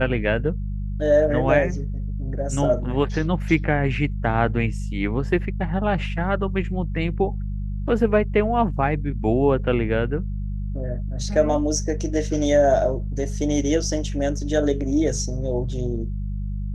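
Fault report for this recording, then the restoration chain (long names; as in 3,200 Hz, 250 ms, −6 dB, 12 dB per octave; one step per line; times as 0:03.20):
mains hum 50 Hz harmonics 4 −27 dBFS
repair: hum removal 50 Hz, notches 4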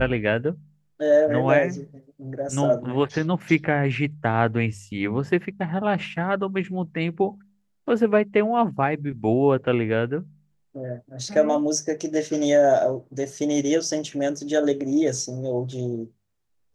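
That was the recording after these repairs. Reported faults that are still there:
none of them is left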